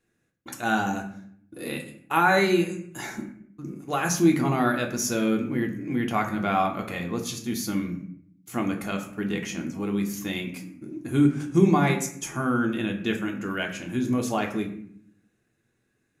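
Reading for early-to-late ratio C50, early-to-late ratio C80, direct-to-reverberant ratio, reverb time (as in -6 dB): 9.5 dB, 13.0 dB, 1.5 dB, 0.65 s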